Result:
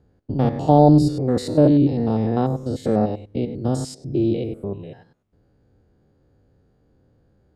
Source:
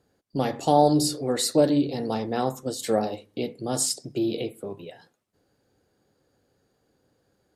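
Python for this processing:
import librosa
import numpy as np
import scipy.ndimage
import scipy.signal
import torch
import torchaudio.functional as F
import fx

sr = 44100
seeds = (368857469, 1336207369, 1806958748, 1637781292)

y = fx.spec_steps(x, sr, hold_ms=100)
y = fx.riaa(y, sr, side='playback')
y = y * 10.0 ** (2.5 / 20.0)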